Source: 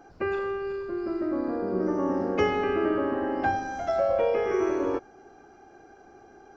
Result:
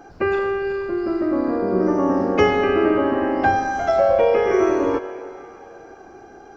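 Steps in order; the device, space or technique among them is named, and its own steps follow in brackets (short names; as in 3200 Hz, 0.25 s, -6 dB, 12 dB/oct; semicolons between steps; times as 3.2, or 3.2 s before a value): filtered reverb send (on a send: HPF 510 Hz 12 dB/oct + LPF 3600 Hz + reverb RT60 3.3 s, pre-delay 90 ms, DRR 11 dB); on the sum: gain +8 dB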